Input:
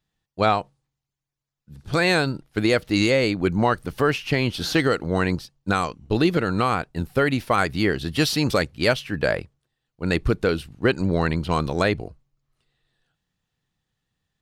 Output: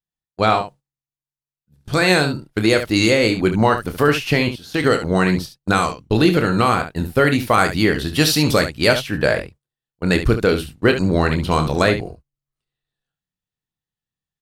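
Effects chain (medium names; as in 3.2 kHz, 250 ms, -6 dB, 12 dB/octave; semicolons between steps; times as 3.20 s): gate -38 dBFS, range -19 dB; 4.43–4.84 s: level held to a coarse grid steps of 23 dB; treble shelf 8.3 kHz +8 dB; early reflections 27 ms -9 dB, 71 ms -10 dB; level rider gain up to 3.5 dB; trim +1.5 dB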